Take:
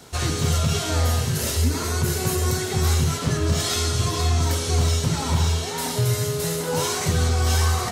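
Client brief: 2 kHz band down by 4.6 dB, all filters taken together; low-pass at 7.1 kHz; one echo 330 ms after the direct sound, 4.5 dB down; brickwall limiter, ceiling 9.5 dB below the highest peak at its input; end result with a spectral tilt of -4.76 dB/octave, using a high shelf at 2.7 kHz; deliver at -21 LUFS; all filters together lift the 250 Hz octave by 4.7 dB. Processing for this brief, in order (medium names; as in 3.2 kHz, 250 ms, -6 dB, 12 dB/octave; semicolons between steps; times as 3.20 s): low-pass 7.1 kHz; peaking EQ 250 Hz +7 dB; peaking EQ 2 kHz -8 dB; treble shelf 2.7 kHz +3.5 dB; peak limiter -16.5 dBFS; delay 330 ms -4.5 dB; trim +2.5 dB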